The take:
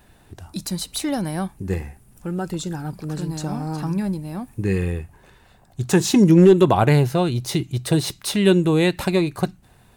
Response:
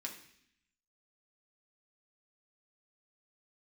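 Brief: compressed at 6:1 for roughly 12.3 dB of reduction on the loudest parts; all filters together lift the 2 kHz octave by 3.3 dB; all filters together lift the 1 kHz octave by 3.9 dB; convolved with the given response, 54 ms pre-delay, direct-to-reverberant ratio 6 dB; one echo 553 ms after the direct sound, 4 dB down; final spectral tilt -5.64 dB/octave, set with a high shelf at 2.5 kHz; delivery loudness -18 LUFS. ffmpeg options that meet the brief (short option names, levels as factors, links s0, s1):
-filter_complex "[0:a]equalizer=f=1000:t=o:g=5,equalizer=f=2000:t=o:g=4.5,highshelf=f=2500:g=-4,acompressor=threshold=0.0794:ratio=6,aecho=1:1:553:0.631,asplit=2[s0][s1];[1:a]atrim=start_sample=2205,adelay=54[s2];[s1][s2]afir=irnorm=-1:irlink=0,volume=0.596[s3];[s0][s3]amix=inputs=2:normalize=0,volume=2.37"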